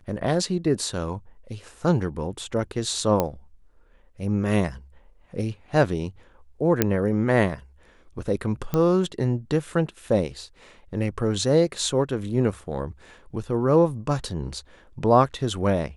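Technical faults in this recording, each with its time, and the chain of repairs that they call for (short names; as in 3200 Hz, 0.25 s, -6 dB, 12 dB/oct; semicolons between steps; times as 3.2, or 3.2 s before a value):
3.2 pop -9 dBFS
6.82 pop -3 dBFS
8.74 pop -12 dBFS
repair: de-click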